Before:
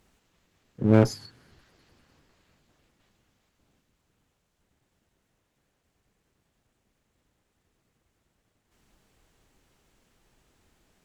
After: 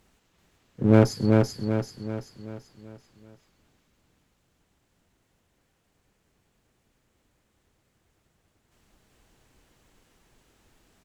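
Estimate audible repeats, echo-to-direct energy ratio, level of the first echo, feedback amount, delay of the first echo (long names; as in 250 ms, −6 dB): 5, −2.0 dB, −3.0 dB, 47%, 386 ms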